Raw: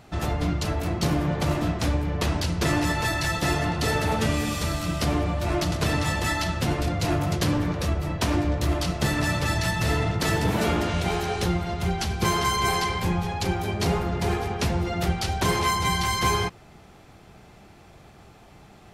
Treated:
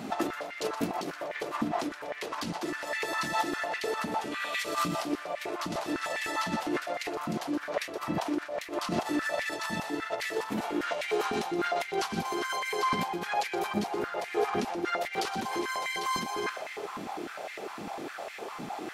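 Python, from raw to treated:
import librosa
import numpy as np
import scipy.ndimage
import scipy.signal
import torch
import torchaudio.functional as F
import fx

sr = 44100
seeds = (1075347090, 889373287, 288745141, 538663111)

p1 = fx.spec_box(x, sr, start_s=4.32, length_s=0.27, low_hz=910.0, high_hz=4400.0, gain_db=10)
p2 = fx.over_compress(p1, sr, threshold_db=-34.0, ratio=-1.0)
p3 = p2 + fx.echo_split(p2, sr, split_hz=1000.0, low_ms=395, high_ms=122, feedback_pct=52, wet_db=-11.5, dry=0)
y = fx.filter_held_highpass(p3, sr, hz=9.9, low_hz=230.0, high_hz=2000.0)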